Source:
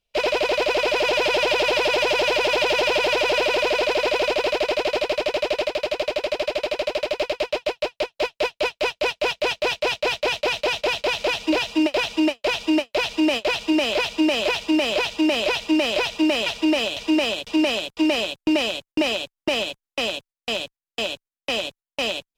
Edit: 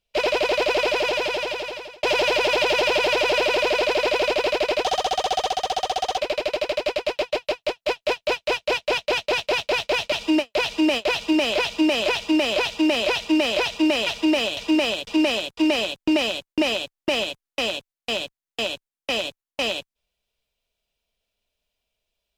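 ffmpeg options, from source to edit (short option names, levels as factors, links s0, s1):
-filter_complex "[0:a]asplit=5[s0][s1][s2][s3][s4];[s0]atrim=end=2.03,asetpts=PTS-STARTPTS,afade=t=out:st=0.82:d=1.21[s5];[s1]atrim=start=2.03:end=4.844,asetpts=PTS-STARTPTS,afade=t=in:d=0.004:c=hsin[s6];[s2]atrim=start=4.84:end=6.52,asetpts=PTS-STARTPTS,asetrate=55125,aresample=44100,atrim=end_sample=59270,asetpts=PTS-STARTPTS[s7];[s3]atrim=start=6.516:end=10.462[s8];[s4]atrim=start=12.518[s9];[s5][s6]concat=n=2:v=0:a=1[s10];[s10][s7]acrossfade=d=0.004:c1=hsin:c2=hsin[s11];[s11][s8]acrossfade=d=0.004:c1=hsin:c2=hsin[s12];[s12][s9]acrossfade=d=0.004:c1=hsin:c2=hsin"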